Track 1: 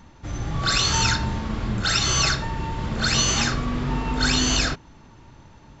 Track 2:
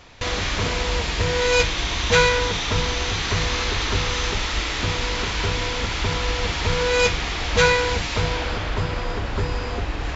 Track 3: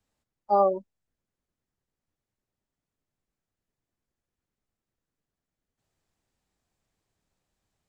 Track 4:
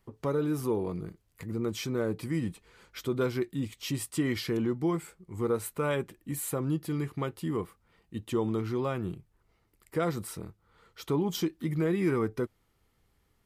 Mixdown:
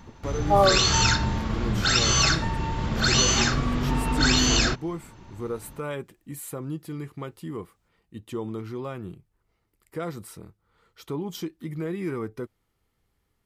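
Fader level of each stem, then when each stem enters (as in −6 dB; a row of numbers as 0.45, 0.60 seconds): 0.0 dB, muted, +2.0 dB, −3.0 dB; 0.00 s, muted, 0.00 s, 0.00 s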